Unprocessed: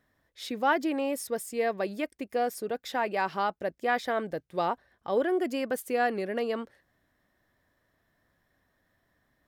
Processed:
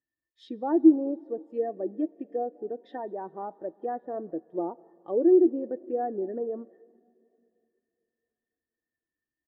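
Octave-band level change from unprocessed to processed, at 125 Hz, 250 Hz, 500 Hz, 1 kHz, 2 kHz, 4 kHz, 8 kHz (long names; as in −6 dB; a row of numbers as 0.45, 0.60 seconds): can't be measured, +8.0 dB, +2.0 dB, −6.5 dB, below −20 dB, below −15 dB, below −35 dB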